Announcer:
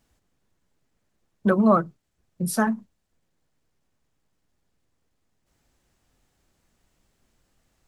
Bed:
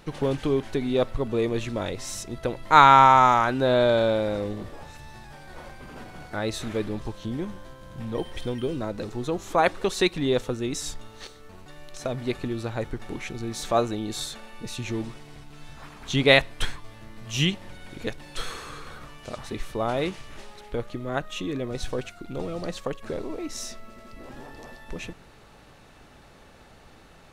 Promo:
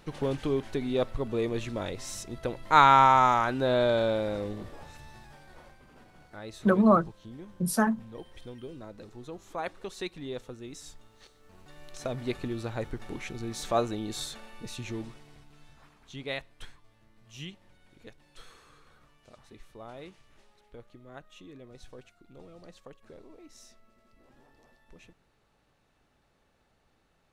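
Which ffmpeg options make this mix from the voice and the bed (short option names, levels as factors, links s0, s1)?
-filter_complex "[0:a]adelay=5200,volume=0.75[s0];[1:a]volume=1.88,afade=t=out:st=5:d=0.85:silence=0.334965,afade=t=in:st=11.35:d=0.54:silence=0.316228,afade=t=out:st=14.43:d=1.67:silence=0.188365[s1];[s0][s1]amix=inputs=2:normalize=0"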